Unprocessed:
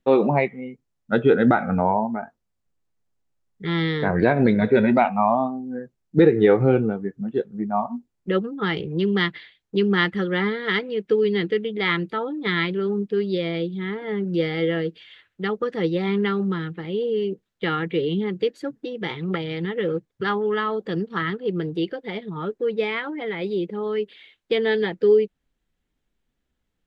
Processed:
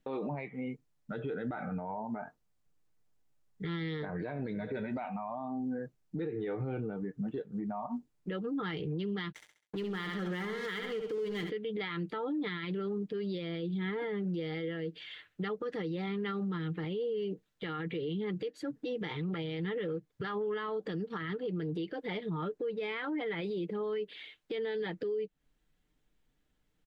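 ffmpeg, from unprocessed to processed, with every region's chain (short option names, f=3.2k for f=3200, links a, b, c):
-filter_complex "[0:a]asettb=1/sr,asplit=3[a][b][c];[a]atrim=end=9.324[d];[b]atrim=start=9.32:end=11.5,asetpts=PTS-STARTPTS,afade=t=in:d=0.004:c=qsin,afade=t=out:st=2.176:d=0.004:c=qsin,aeval=exprs='sgn(val(0))*max(abs(val(0))-0.0133,0)':c=same,aecho=1:1:67|134|201|268:0.355|0.138|0.054|0.021,atrim=end_sample=96138[e];[c]atrim=start=11.496[f];[d][e]acrossfade=d=0.004:c1=hsin:c2=qsin[g];[g][f]acrossfade=d=0.004:c1=qsin:c2=hsin,aecho=1:1:6.6:0.37,acompressor=threshold=-27dB:ratio=8,alimiter=level_in=5dB:limit=-24dB:level=0:latency=1:release=48,volume=-5dB"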